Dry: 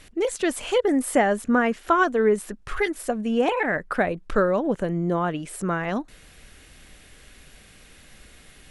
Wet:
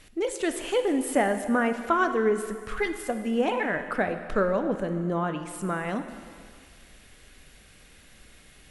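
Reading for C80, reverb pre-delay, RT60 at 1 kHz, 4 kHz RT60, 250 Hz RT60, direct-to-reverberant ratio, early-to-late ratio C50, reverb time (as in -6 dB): 10.0 dB, 7 ms, 2.0 s, 1.9 s, 1.8 s, 7.5 dB, 9.0 dB, 1.9 s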